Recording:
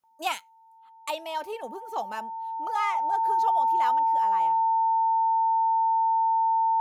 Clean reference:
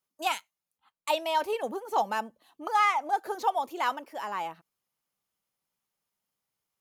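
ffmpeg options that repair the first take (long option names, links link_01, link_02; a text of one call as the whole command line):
ffmpeg -i in.wav -af "bandreject=frequency=900:width=30,asetnsamples=nb_out_samples=441:pad=0,asendcmd='1.1 volume volume 5dB',volume=0dB" out.wav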